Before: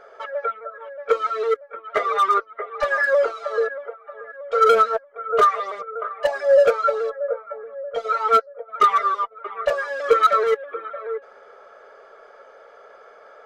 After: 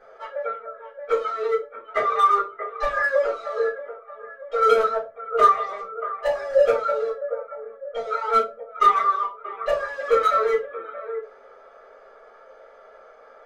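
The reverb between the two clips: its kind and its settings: shoebox room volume 120 m³, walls furnished, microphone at 3.8 m; gain -11.5 dB

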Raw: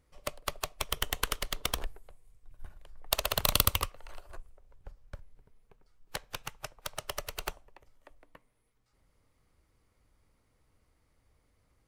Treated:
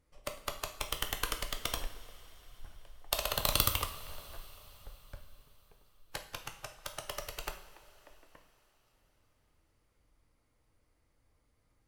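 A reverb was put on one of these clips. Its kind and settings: two-slope reverb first 0.51 s, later 4.7 s, from -18 dB, DRR 4.5 dB; gain -4 dB

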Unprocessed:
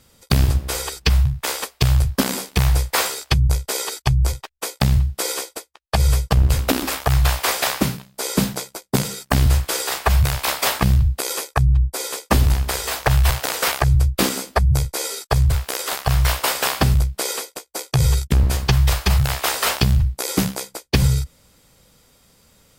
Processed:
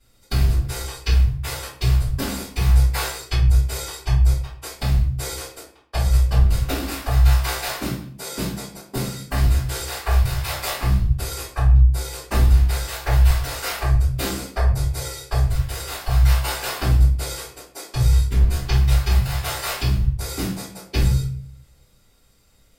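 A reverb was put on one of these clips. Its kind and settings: shoebox room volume 47 m³, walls mixed, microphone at 3 m; gain -19 dB

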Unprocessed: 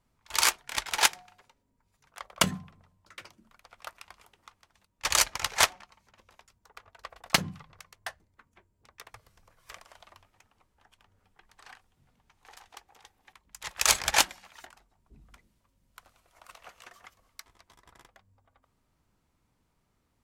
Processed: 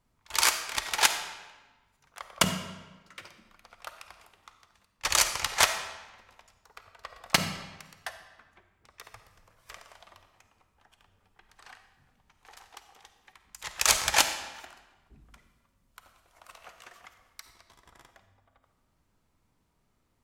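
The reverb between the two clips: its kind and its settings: digital reverb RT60 1.2 s, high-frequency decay 0.85×, pre-delay 10 ms, DRR 8 dB

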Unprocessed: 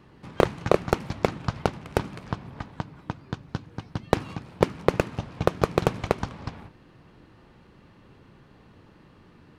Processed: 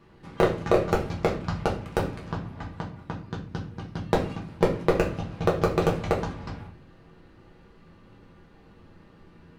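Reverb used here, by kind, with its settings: shoebox room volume 32 m³, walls mixed, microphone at 0.7 m; gain -5 dB

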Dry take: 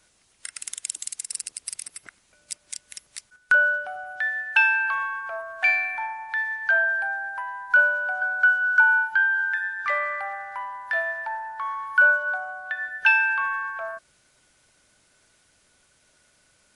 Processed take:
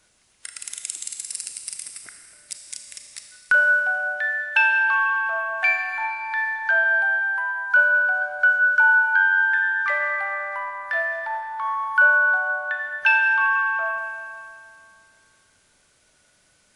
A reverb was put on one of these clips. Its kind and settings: Schroeder reverb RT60 2.3 s, combs from 27 ms, DRR 4.5 dB

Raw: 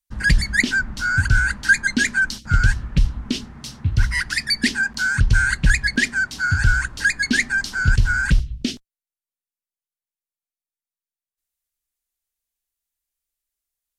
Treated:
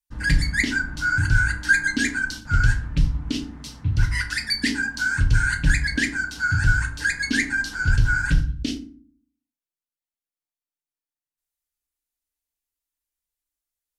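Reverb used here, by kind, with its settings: FDN reverb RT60 0.46 s, low-frequency decay 1.6×, high-frequency decay 0.6×, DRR 2.5 dB; gain -5 dB

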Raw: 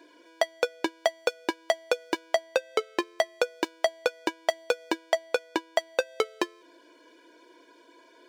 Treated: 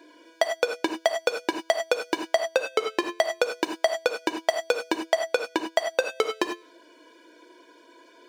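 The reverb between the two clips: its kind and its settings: non-linear reverb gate 0.12 s rising, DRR 5.5 dB; gain +2 dB

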